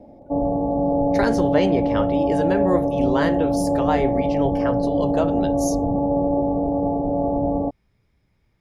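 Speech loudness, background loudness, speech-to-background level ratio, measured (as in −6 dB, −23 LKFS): −25.5 LKFS, −21.5 LKFS, −4.0 dB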